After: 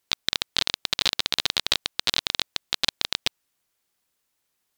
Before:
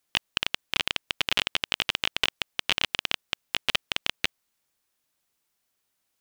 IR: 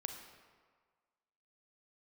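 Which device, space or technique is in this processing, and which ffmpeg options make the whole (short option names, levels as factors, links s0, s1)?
nightcore: -af "asetrate=57330,aresample=44100,volume=1.33"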